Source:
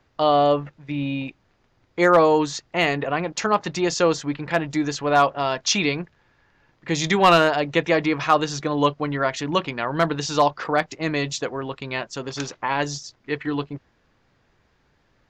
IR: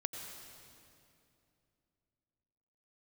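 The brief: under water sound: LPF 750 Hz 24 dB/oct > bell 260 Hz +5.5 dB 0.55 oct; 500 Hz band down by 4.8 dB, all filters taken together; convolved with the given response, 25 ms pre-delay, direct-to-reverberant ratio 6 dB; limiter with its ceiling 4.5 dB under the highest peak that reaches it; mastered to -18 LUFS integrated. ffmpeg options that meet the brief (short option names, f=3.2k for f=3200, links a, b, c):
-filter_complex "[0:a]equalizer=f=500:t=o:g=-6,alimiter=limit=-11dB:level=0:latency=1,asplit=2[a][b];[1:a]atrim=start_sample=2205,adelay=25[c];[b][c]afir=irnorm=-1:irlink=0,volume=-6dB[d];[a][d]amix=inputs=2:normalize=0,lowpass=f=750:w=0.5412,lowpass=f=750:w=1.3066,equalizer=f=260:t=o:w=0.55:g=5.5,volume=8dB"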